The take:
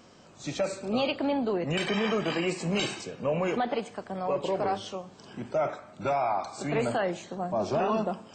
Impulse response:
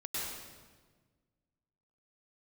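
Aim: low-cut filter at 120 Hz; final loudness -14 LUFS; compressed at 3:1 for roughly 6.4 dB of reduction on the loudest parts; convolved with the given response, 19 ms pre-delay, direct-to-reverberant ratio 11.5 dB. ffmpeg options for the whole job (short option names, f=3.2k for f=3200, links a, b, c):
-filter_complex "[0:a]highpass=120,acompressor=threshold=-32dB:ratio=3,asplit=2[a][b];[1:a]atrim=start_sample=2205,adelay=19[c];[b][c]afir=irnorm=-1:irlink=0,volume=-14.5dB[d];[a][d]amix=inputs=2:normalize=0,volume=21dB"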